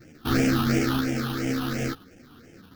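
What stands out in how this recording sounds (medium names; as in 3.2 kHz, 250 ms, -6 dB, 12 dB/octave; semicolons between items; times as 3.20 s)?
aliases and images of a low sample rate 1 kHz, jitter 20%; phasing stages 6, 2.9 Hz, lowest notch 550–1100 Hz; tremolo saw up 0.99 Hz, depth 35%; a shimmering, thickened sound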